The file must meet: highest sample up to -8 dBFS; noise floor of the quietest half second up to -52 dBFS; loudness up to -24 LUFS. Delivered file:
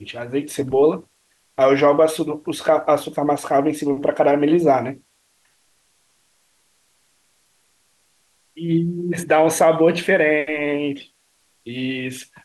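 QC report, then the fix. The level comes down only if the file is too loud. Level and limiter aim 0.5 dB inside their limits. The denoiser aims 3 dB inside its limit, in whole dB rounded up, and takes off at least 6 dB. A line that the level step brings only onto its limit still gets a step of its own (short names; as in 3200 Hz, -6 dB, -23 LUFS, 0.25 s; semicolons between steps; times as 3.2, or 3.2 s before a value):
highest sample -5.5 dBFS: fail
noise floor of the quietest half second -63 dBFS: OK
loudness -19.0 LUFS: fail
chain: gain -5.5 dB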